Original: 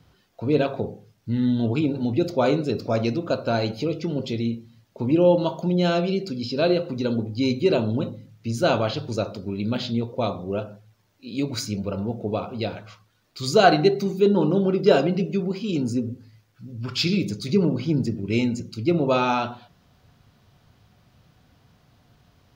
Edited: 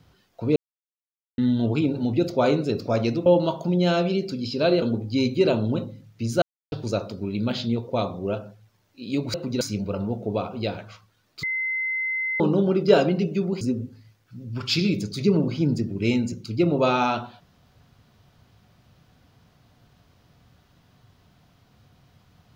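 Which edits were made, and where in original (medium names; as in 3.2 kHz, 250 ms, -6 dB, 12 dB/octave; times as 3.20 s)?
0.56–1.38 s: mute
3.26–5.24 s: delete
6.80–7.07 s: move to 11.59 s
8.67–8.97 s: mute
13.41–14.38 s: bleep 2.06 kHz -23.5 dBFS
15.59–15.89 s: delete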